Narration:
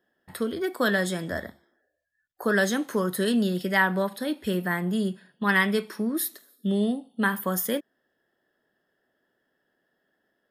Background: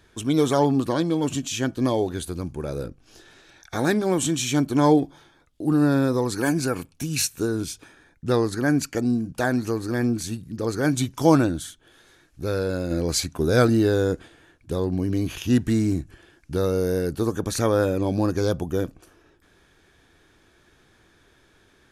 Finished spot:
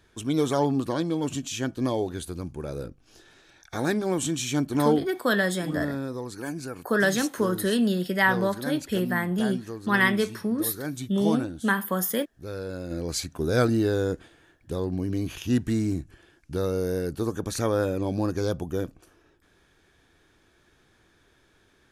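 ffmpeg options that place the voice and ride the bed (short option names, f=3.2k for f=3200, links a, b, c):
-filter_complex "[0:a]adelay=4450,volume=0.5dB[a];[1:a]volume=3dB,afade=t=out:st=4.75:d=0.5:silence=0.446684,afade=t=in:st=12.38:d=1.21:silence=0.446684[b];[a][b]amix=inputs=2:normalize=0"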